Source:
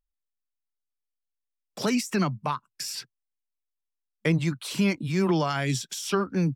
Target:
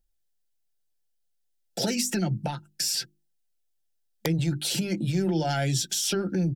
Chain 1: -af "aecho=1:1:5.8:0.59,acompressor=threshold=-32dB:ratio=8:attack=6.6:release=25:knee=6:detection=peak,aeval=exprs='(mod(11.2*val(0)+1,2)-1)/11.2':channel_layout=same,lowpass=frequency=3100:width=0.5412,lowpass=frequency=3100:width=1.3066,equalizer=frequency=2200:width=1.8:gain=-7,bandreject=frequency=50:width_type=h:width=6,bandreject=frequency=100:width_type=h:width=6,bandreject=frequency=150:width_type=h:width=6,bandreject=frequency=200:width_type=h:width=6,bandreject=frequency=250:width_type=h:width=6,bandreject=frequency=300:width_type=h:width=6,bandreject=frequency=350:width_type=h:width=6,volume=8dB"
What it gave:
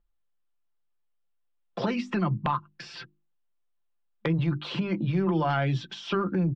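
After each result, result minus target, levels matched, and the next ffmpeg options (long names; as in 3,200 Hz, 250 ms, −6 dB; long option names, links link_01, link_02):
4,000 Hz band −8.0 dB; 1,000 Hz band +6.0 dB
-af "aecho=1:1:5.8:0.59,acompressor=threshold=-32dB:ratio=8:attack=6.6:release=25:knee=6:detection=peak,aeval=exprs='(mod(11.2*val(0)+1,2)-1)/11.2':channel_layout=same,equalizer=frequency=2200:width=1.8:gain=-7,bandreject=frequency=50:width_type=h:width=6,bandreject=frequency=100:width_type=h:width=6,bandreject=frequency=150:width_type=h:width=6,bandreject=frequency=200:width_type=h:width=6,bandreject=frequency=250:width_type=h:width=6,bandreject=frequency=300:width_type=h:width=6,bandreject=frequency=350:width_type=h:width=6,volume=8dB"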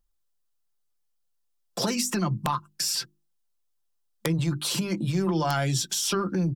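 1,000 Hz band +4.5 dB
-af "aecho=1:1:5.8:0.59,acompressor=threshold=-32dB:ratio=8:attack=6.6:release=25:knee=6:detection=peak,asuperstop=centerf=1100:order=4:qfactor=1.9,aeval=exprs='(mod(11.2*val(0)+1,2)-1)/11.2':channel_layout=same,equalizer=frequency=2200:width=1.8:gain=-7,bandreject=frequency=50:width_type=h:width=6,bandreject=frequency=100:width_type=h:width=6,bandreject=frequency=150:width_type=h:width=6,bandreject=frequency=200:width_type=h:width=6,bandreject=frequency=250:width_type=h:width=6,bandreject=frequency=300:width_type=h:width=6,bandreject=frequency=350:width_type=h:width=6,volume=8dB"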